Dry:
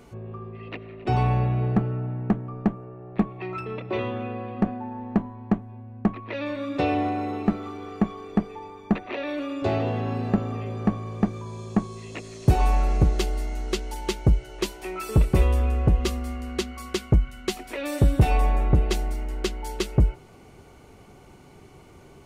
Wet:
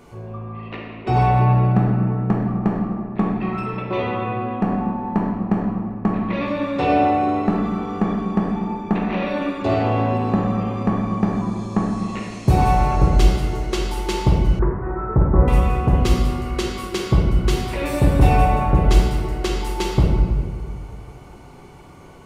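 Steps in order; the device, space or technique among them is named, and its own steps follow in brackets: stairwell (reverberation RT60 1.9 s, pre-delay 12 ms, DRR -2.5 dB); 14.59–15.48 s: steep low-pass 1.7 kHz 48 dB/octave; peaking EQ 1 kHz +5 dB 0.53 oct; trim +1 dB

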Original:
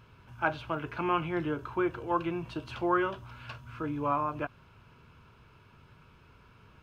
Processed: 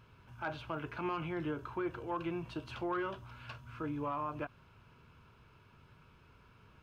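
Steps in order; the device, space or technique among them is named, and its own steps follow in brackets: soft clipper into limiter (saturation -17.5 dBFS, distortion -22 dB; peak limiter -24.5 dBFS, peak gain reduction 6 dB); trim -4 dB

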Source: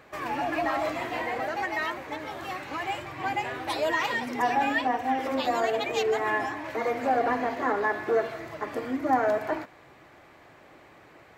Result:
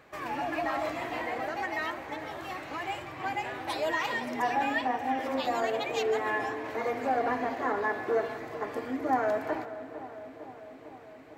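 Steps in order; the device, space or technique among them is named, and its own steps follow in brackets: dub delay into a spring reverb (filtered feedback delay 452 ms, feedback 75%, low-pass 1.6 kHz, level -13.5 dB; spring tank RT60 3.2 s, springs 41 ms, chirp 70 ms, DRR 14.5 dB); trim -3.5 dB

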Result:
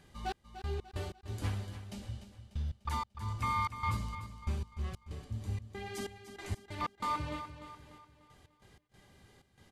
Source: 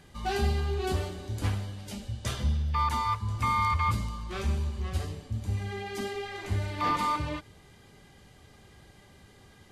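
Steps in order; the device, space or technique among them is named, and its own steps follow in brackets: trance gate with a delay (trance gate "xx..x.x.xxx." 94 bpm -60 dB; feedback delay 296 ms, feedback 44%, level -11 dB); 5.93–6.75 s: dynamic bell 8.7 kHz, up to +6 dB, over -59 dBFS, Q 0.71; trim -6 dB

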